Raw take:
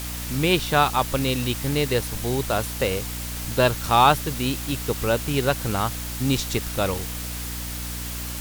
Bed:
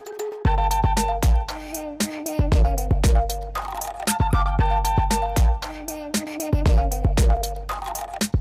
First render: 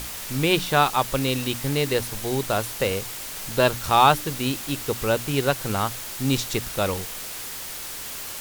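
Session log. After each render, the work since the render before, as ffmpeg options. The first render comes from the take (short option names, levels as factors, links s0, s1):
-af "bandreject=f=60:t=h:w=6,bandreject=f=120:t=h:w=6,bandreject=f=180:t=h:w=6,bandreject=f=240:t=h:w=6,bandreject=f=300:t=h:w=6"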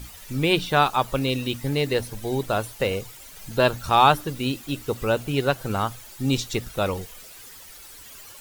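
-af "afftdn=nr=13:nf=-35"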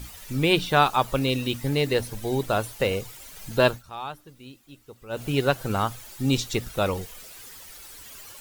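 -filter_complex "[0:a]asplit=3[s0][s1][s2];[s0]atrim=end=3.83,asetpts=PTS-STARTPTS,afade=t=out:st=3.67:d=0.16:silence=0.112202[s3];[s1]atrim=start=3.83:end=5.09,asetpts=PTS-STARTPTS,volume=0.112[s4];[s2]atrim=start=5.09,asetpts=PTS-STARTPTS,afade=t=in:d=0.16:silence=0.112202[s5];[s3][s4][s5]concat=n=3:v=0:a=1"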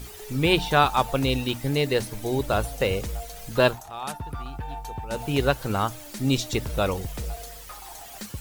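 -filter_complex "[1:a]volume=0.178[s0];[0:a][s0]amix=inputs=2:normalize=0"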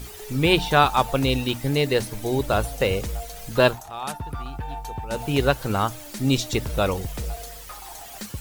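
-af "volume=1.26"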